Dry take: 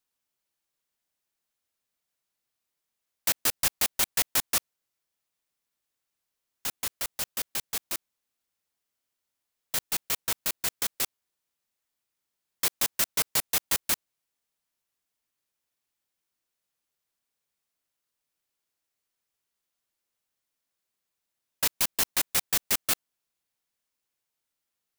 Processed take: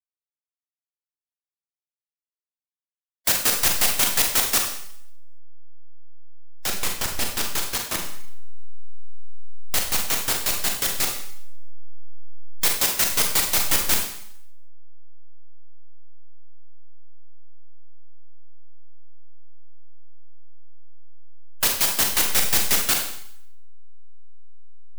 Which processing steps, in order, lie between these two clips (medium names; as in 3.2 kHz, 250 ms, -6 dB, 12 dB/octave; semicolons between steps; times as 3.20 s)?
send-on-delta sampling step -23.5 dBFS; Schroeder reverb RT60 0.7 s, combs from 32 ms, DRR 0.5 dB; harmonic-percussive split harmonic -6 dB; trim +6 dB